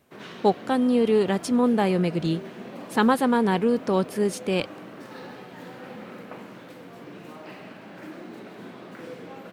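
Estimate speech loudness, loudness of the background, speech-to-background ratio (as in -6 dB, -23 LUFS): -23.5 LUFS, -41.0 LUFS, 17.5 dB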